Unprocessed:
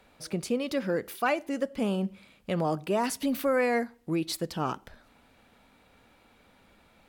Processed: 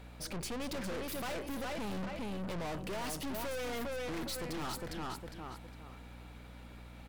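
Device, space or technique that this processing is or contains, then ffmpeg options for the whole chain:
valve amplifier with mains hum: -filter_complex "[0:a]asettb=1/sr,asplit=3[link_01][link_02][link_03];[link_01]atrim=end=2.594[link_04];[link_02]atrim=start=2.59:end=3.69,asetpts=PTS-STARTPTS,afade=type=in:duration=0.004:curve=qsin,afade=type=out:start_time=1.096:duration=0.004:curve=qsin,lowshelf=frequency=190:gain=-6[link_05];[link_03]atrim=start=3.686[link_06];[link_04][link_05]acrossfade=duration=0.004:curve1=hsin:curve2=qsin[link_07];[link_07][link_06]acrossfade=duration=0.004:curve1=qsin:curve2=hsin,aecho=1:1:407|814|1221:0.447|0.125|0.035,aeval=exprs='(tanh(141*val(0)+0.45)-tanh(0.45))/141':channel_layout=same,aeval=exprs='val(0)+0.00178*(sin(2*PI*60*n/s)+sin(2*PI*2*60*n/s)/2+sin(2*PI*3*60*n/s)/3+sin(2*PI*4*60*n/s)/4+sin(2*PI*5*60*n/s)/5)':channel_layout=same,volume=5dB"

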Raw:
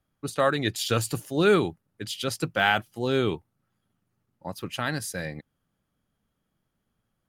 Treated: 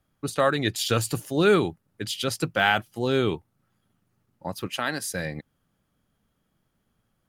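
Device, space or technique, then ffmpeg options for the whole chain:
parallel compression: -filter_complex "[0:a]asplit=2[link_01][link_02];[link_02]acompressor=threshold=-35dB:ratio=6,volume=-3dB[link_03];[link_01][link_03]amix=inputs=2:normalize=0,asettb=1/sr,asplit=3[link_04][link_05][link_06];[link_04]atrim=end=4.674[link_07];[link_05]atrim=start=4.67:end=5.11,asetpts=PTS-STARTPTS,afade=type=in:duration=0.004:curve=qsin,afade=type=out:start_time=0.436:duration=0.004:curve=qsin,highpass=240[link_08];[link_06]atrim=start=5.106[link_09];[link_07][link_08]acrossfade=duration=0.004:curve1=hsin:curve2=qsin[link_10];[link_10][link_09]acrossfade=duration=0.004:curve1=qsin:curve2=hsin"

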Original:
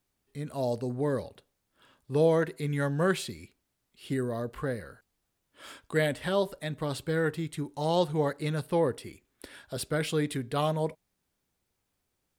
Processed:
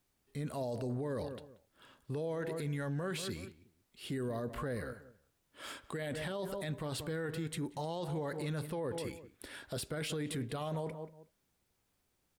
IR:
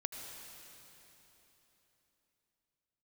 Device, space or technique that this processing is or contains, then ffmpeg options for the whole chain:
stacked limiters: -filter_complex "[0:a]asplit=2[link_01][link_02];[link_02]adelay=183,lowpass=frequency=1500:poles=1,volume=-16dB,asplit=2[link_03][link_04];[link_04]adelay=183,lowpass=frequency=1500:poles=1,volume=0.24[link_05];[link_01][link_03][link_05]amix=inputs=3:normalize=0,alimiter=limit=-20dB:level=0:latency=1:release=137,alimiter=level_in=1.5dB:limit=-24dB:level=0:latency=1:release=76,volume=-1.5dB,alimiter=level_in=7.5dB:limit=-24dB:level=0:latency=1:release=11,volume=-7.5dB,volume=1dB"

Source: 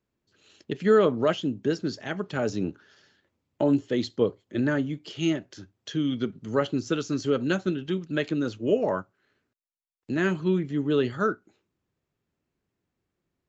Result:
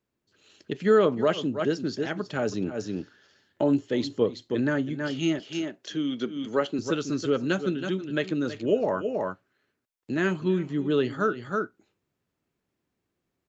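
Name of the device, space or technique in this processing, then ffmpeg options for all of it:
ducked delay: -filter_complex "[0:a]asplit=3[link_01][link_02][link_03];[link_02]adelay=322,volume=-2.5dB[link_04];[link_03]apad=whole_len=609067[link_05];[link_04][link_05]sidechaincompress=threshold=-40dB:ratio=8:attack=10:release=102[link_06];[link_01][link_06]amix=inputs=2:normalize=0,asettb=1/sr,asplit=3[link_07][link_08][link_09];[link_07]atrim=end=5.394[link_10];[link_08]atrim=start=5.39:end=6.79,asetpts=PTS-STARTPTS,afade=type=in:duration=0.004:curve=qsin,afade=type=out:start_time=1.396:duration=0.004:curve=qsin,highpass=210[link_11];[link_09]atrim=start=6.786[link_12];[link_10][link_11]acrossfade=duration=0.004:curve1=hsin:curve2=qsin[link_13];[link_13][link_12]acrossfade=duration=0.004:curve1=qsin:curve2=hsin,lowshelf=frequency=95:gain=-6"

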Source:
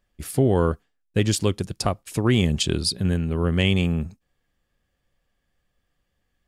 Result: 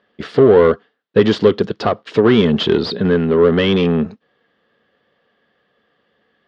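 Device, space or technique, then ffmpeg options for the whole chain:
overdrive pedal into a guitar cabinet: -filter_complex "[0:a]asplit=2[link_01][link_02];[link_02]highpass=frequency=720:poles=1,volume=22dB,asoftclip=type=tanh:threshold=-8.5dB[link_03];[link_01][link_03]amix=inputs=2:normalize=0,lowpass=frequency=3600:poles=1,volume=-6dB,highpass=110,equalizer=frequency=220:width_type=q:width=4:gain=7,equalizer=frequency=440:width_type=q:width=4:gain=9,equalizer=frequency=850:width_type=q:width=4:gain=-3,equalizer=frequency=2400:width_type=q:width=4:gain=-9,lowpass=frequency=3800:width=0.5412,lowpass=frequency=3800:width=1.3066,volume=2.5dB"

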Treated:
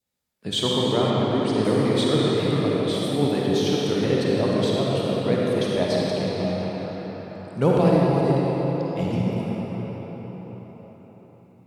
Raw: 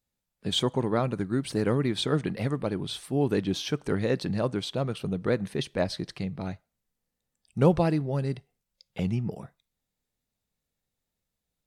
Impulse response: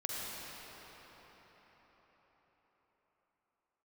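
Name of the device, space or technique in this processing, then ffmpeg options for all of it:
cathedral: -filter_complex "[0:a]highpass=frequency=130:poles=1[link_01];[1:a]atrim=start_sample=2205[link_02];[link_01][link_02]afir=irnorm=-1:irlink=0,asettb=1/sr,asplit=3[link_03][link_04][link_05];[link_03]atrim=end=1.104[link_06];[link_04]atrim=start=1.1:end=1.65,asetpts=PTS-STARTPTS,afade=type=in:duration=0.004:curve=qsin,afade=type=out:start_time=0.546:duration=0.004:curve=qsin,lowpass=6200[link_07];[link_05]atrim=start=1.646[link_08];[link_06][link_07]acrossfade=duration=0.004:curve1=hsin:curve2=qsin[link_09];[link_09][link_08]acrossfade=duration=0.004:curve1=qsin:curve2=hsin,adynamicequalizer=threshold=0.00282:dfrequency=1500:dqfactor=3:tfrequency=1500:tqfactor=3:attack=5:release=100:ratio=0.375:range=3.5:mode=cutabove:tftype=bell,volume=4dB"

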